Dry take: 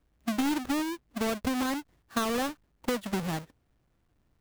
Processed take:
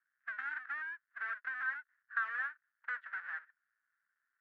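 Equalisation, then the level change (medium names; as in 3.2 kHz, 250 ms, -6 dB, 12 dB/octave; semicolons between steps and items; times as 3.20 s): Butterworth band-pass 1.6 kHz, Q 3.8; +5.5 dB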